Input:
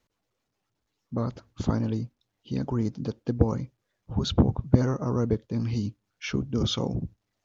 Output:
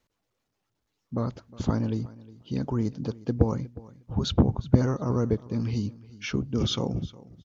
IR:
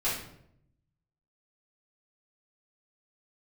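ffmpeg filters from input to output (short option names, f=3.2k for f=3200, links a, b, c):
-af "aecho=1:1:360|720:0.1|0.016"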